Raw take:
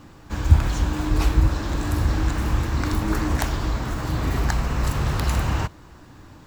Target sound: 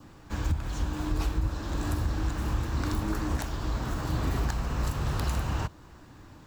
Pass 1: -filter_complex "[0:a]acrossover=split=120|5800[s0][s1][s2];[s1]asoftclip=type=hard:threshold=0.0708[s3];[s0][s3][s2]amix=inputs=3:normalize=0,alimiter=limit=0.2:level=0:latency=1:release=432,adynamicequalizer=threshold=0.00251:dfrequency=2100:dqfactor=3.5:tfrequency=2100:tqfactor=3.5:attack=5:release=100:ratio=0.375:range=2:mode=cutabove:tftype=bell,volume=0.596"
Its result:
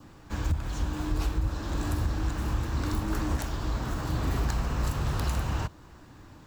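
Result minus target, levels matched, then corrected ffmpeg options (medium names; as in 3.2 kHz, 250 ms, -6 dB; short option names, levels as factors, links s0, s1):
hard clipper: distortion +11 dB
-filter_complex "[0:a]acrossover=split=120|5800[s0][s1][s2];[s1]asoftclip=type=hard:threshold=0.158[s3];[s0][s3][s2]amix=inputs=3:normalize=0,alimiter=limit=0.2:level=0:latency=1:release=432,adynamicequalizer=threshold=0.00251:dfrequency=2100:dqfactor=3.5:tfrequency=2100:tqfactor=3.5:attack=5:release=100:ratio=0.375:range=2:mode=cutabove:tftype=bell,volume=0.596"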